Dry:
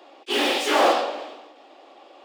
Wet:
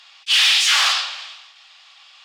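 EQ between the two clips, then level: high-pass 1.2 kHz 24 dB/octave; peaking EQ 5.1 kHz +14.5 dB 2.5 oct; 0.0 dB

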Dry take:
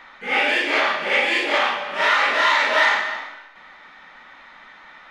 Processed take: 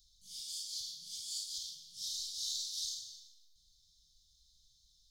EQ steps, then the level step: inverse Chebyshev band-stop 270–950 Hz, stop band 60 dB; inverse Chebyshev band-stop 1.1–2.7 kHz, stop band 50 dB; treble shelf 6.5 kHz +7 dB; -2.5 dB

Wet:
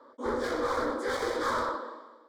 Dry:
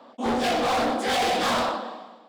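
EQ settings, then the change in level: treble shelf 4.9 kHz -11 dB; static phaser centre 730 Hz, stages 6; -1.5 dB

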